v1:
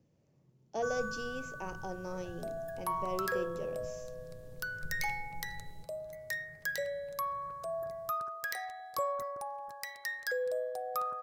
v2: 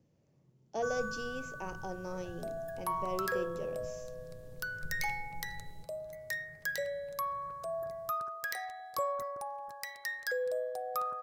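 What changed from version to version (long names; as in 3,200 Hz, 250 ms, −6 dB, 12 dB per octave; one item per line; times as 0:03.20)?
nothing changed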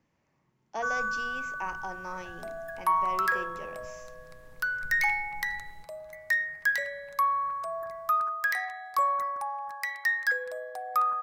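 master: add graphic EQ with 10 bands 125 Hz −9 dB, 500 Hz −7 dB, 1,000 Hz +10 dB, 2,000 Hz +10 dB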